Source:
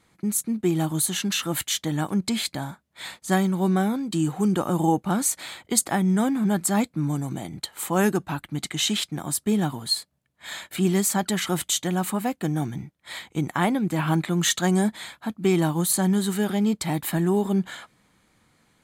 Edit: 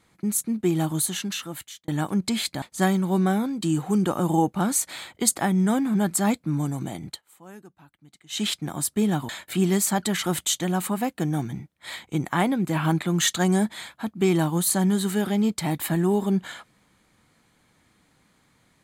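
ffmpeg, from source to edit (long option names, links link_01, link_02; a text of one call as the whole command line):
ffmpeg -i in.wav -filter_complex "[0:a]asplit=6[link_01][link_02][link_03][link_04][link_05][link_06];[link_01]atrim=end=1.88,asetpts=PTS-STARTPTS,afade=type=out:start_time=0.92:duration=0.96[link_07];[link_02]atrim=start=1.88:end=2.622,asetpts=PTS-STARTPTS,afade=type=in:duration=0.004:curve=hsin[link_08];[link_03]atrim=start=3.118:end=7.72,asetpts=PTS-STARTPTS,afade=type=out:start_time=4.452:duration=0.15:silence=0.0668344[link_09];[link_04]atrim=start=7.72:end=8.79,asetpts=PTS-STARTPTS,volume=-23.5dB[link_10];[link_05]atrim=start=8.79:end=9.792,asetpts=PTS-STARTPTS,afade=type=in:duration=0.15:silence=0.0668344[link_11];[link_06]atrim=start=10.518[link_12];[link_07][link_08]concat=n=2:v=0:a=1[link_13];[link_09][link_10][link_11]concat=n=3:v=0:a=1[link_14];[link_13][link_14]acrossfade=duration=0.004:curve1=hsin:curve2=hsin[link_15];[link_15][link_12]acrossfade=duration=0.004:curve1=hsin:curve2=hsin" out.wav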